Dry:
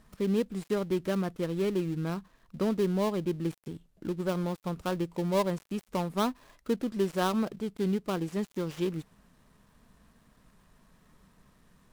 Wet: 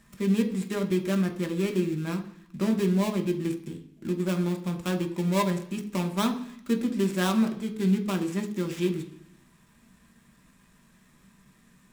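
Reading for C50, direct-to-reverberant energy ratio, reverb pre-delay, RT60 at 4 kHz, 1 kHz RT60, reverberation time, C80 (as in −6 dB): 12.5 dB, 3.5 dB, 3 ms, 1.1 s, 0.70 s, 0.65 s, 15.5 dB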